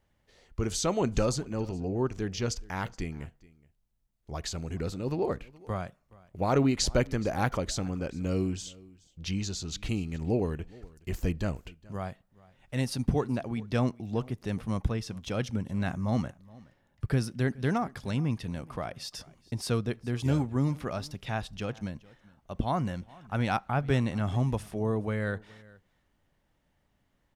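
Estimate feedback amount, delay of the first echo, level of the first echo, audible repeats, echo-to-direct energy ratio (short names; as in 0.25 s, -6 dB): no steady repeat, 0.421 s, -23.0 dB, 1, -23.0 dB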